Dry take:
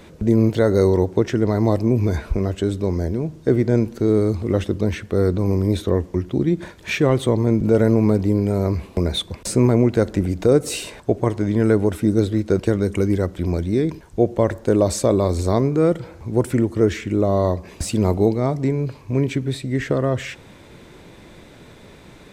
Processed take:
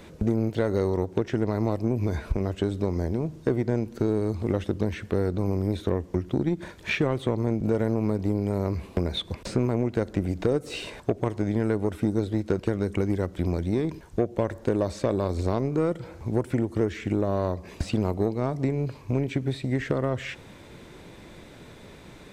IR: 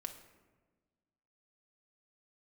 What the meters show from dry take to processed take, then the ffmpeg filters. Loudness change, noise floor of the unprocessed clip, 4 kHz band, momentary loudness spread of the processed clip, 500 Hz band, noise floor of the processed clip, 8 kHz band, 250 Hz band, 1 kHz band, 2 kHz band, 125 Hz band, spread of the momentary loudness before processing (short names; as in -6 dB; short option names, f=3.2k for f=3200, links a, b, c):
-7.5 dB, -45 dBFS, -6.5 dB, 7 LU, -8.0 dB, -47 dBFS, -14.5 dB, -7.5 dB, -6.0 dB, -4.5 dB, -7.0 dB, 7 LU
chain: -filter_complex "[0:a]acompressor=threshold=-22dB:ratio=4,aeval=exprs='0.355*(cos(1*acos(clip(val(0)/0.355,-1,1)))-cos(1*PI/2))+0.0224*(cos(5*acos(clip(val(0)/0.355,-1,1)))-cos(5*PI/2))+0.0282*(cos(7*acos(clip(val(0)/0.355,-1,1)))-cos(7*PI/2))':c=same,acrossover=split=4500[a][b];[b]acompressor=threshold=-51dB:ratio=4:attack=1:release=60[c];[a][c]amix=inputs=2:normalize=0"